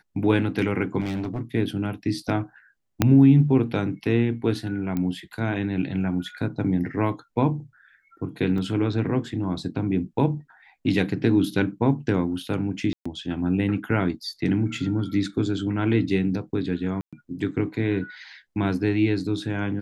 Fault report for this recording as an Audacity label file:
1.000000	1.420000	clipped -24.5 dBFS
3.020000	3.020000	pop -4 dBFS
4.970000	4.970000	pop -16 dBFS
8.580000	8.580000	dropout 3.3 ms
12.930000	13.050000	dropout 125 ms
17.010000	17.130000	dropout 116 ms

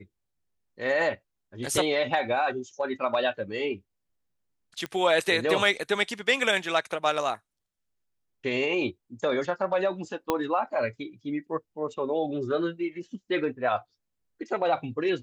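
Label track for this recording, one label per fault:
4.860000	4.860000	pop -19 dBFS
10.300000	10.300000	pop -11 dBFS

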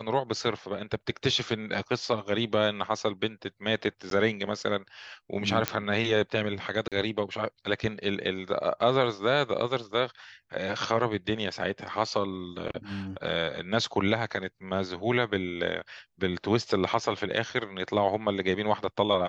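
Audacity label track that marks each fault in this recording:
4.100000	4.110000	dropout 12 ms
5.680000	5.680000	pop -7 dBFS
6.880000	6.920000	dropout 37 ms

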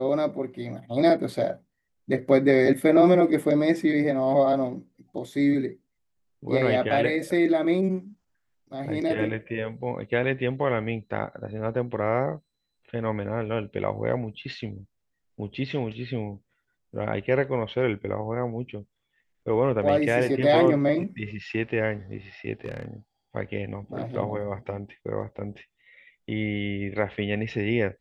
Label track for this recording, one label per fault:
22.640000	22.880000	clipped -26.5 dBFS

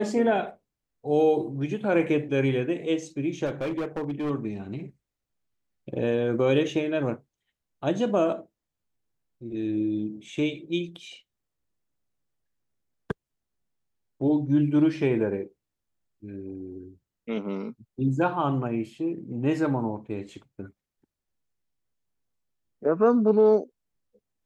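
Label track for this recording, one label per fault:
3.450000	4.310000	clipped -25.5 dBFS

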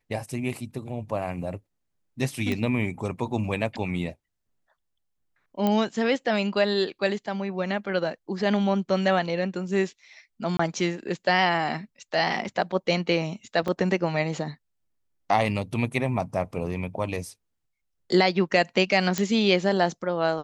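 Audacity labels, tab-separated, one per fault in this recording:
2.520000	2.520000	pop -16 dBFS
5.670000	5.670000	pop -12 dBFS
10.570000	10.590000	dropout 24 ms
13.680000	13.690000	dropout 5.2 ms
19.180000	19.180000	pop -10 dBFS

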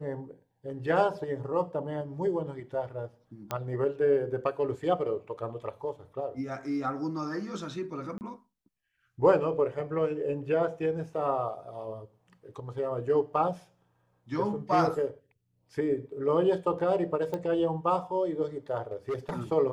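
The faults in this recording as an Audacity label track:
3.510000	3.510000	pop -17 dBFS
8.180000	8.210000	dropout 29 ms
17.340000	17.340000	pop -21 dBFS
18.910000	19.310000	clipped -27.5 dBFS

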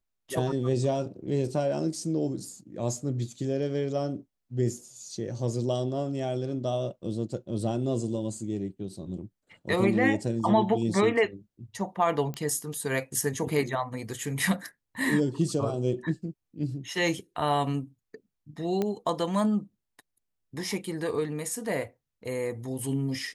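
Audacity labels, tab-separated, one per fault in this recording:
12.340000	12.340000	pop -22 dBFS
18.820000	18.820000	pop -16 dBFS

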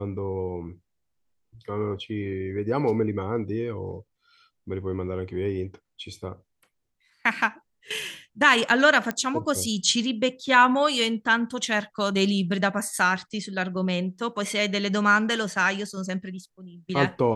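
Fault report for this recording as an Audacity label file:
9.110000	9.110000	pop -13 dBFS

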